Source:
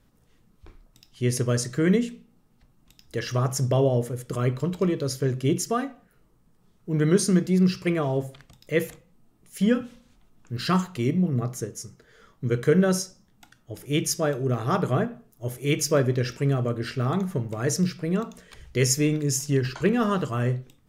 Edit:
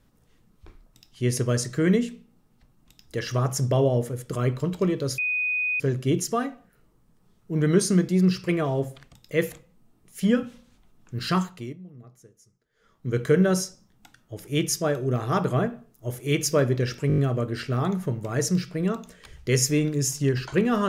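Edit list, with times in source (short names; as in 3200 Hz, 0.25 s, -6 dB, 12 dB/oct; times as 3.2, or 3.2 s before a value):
5.18 add tone 2490 Hz -22.5 dBFS 0.62 s
10.68–12.58 dip -21 dB, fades 0.48 s
16.46 stutter 0.02 s, 6 plays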